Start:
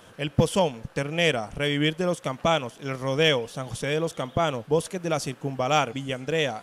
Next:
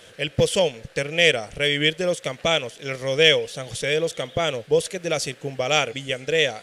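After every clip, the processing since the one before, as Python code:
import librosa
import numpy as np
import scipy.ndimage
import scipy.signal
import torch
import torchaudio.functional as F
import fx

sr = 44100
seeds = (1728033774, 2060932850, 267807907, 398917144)

y = fx.graphic_eq(x, sr, hz=(250, 500, 1000, 2000, 4000, 8000), db=(-5, 8, -9, 8, 7, 6))
y = y * 10.0 ** (-1.0 / 20.0)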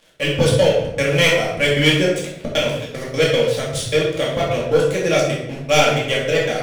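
y = fx.leveller(x, sr, passes=3)
y = fx.step_gate(y, sr, bpm=153, pattern='x.xxx.x.', floor_db=-60.0, edge_ms=4.5)
y = fx.room_shoebox(y, sr, seeds[0], volume_m3=290.0, walls='mixed', distance_m=2.3)
y = y * 10.0 ** (-9.5 / 20.0)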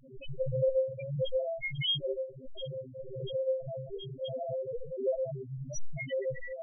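y = fx.dmg_wind(x, sr, seeds[1], corner_hz=560.0, level_db=-29.0)
y = fx.stiff_resonator(y, sr, f0_hz=130.0, decay_s=0.34, stiffness=0.002)
y = fx.spec_topn(y, sr, count=2)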